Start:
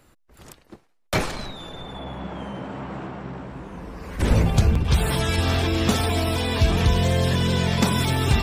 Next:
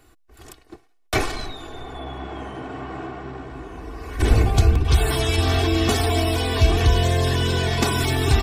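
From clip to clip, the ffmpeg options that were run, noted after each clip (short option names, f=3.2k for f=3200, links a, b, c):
-af "aecho=1:1:2.7:0.72"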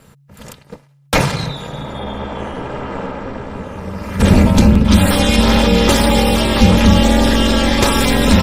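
-af "aeval=exprs='val(0)*sin(2*PI*140*n/s)':c=same,apsyclip=12.5dB,volume=-1.5dB"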